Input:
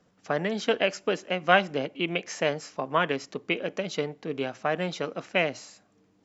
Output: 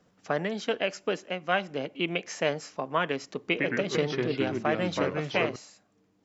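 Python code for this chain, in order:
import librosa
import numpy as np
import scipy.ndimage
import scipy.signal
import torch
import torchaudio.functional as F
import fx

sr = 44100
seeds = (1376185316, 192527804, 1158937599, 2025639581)

y = fx.rider(x, sr, range_db=10, speed_s=0.5)
y = fx.echo_pitch(y, sr, ms=87, semitones=-3, count=2, db_per_echo=-3.0, at=(3.39, 5.56))
y = y * librosa.db_to_amplitude(-2.5)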